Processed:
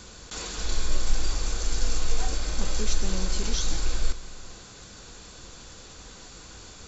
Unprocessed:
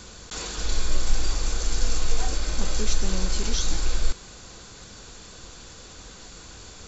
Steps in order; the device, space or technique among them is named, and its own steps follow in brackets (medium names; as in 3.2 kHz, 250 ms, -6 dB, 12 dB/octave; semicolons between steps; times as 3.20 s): compressed reverb return (on a send at -8.5 dB: reverberation RT60 1.0 s, pre-delay 118 ms + compression, threshold -24 dBFS, peak gain reduction 12.5 dB); on the sum: trim -2 dB